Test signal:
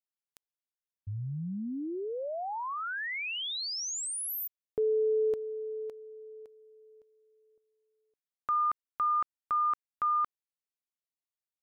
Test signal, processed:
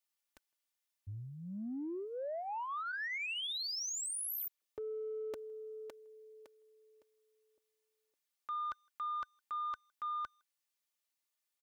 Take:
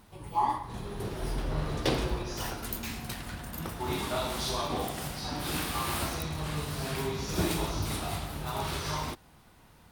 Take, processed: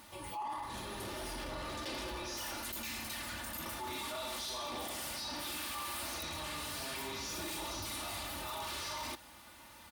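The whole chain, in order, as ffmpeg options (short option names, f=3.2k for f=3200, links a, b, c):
-filter_complex "[0:a]highpass=96,equalizer=f=200:w=0.32:g=-10,bandreject=f=1.5k:w=25,aecho=1:1:3.4:0.64,areverse,acompressor=threshold=-44dB:ratio=6:attack=1.2:release=24:knee=6:detection=peak,areverse,aeval=exprs='0.0376*sin(PI/2*2.51*val(0)/0.0376)':c=same,asplit=2[a][b];[b]adelay=160,highpass=300,lowpass=3.4k,asoftclip=type=hard:threshold=-38dB,volume=-29dB[c];[a][c]amix=inputs=2:normalize=0,volume=-5.5dB"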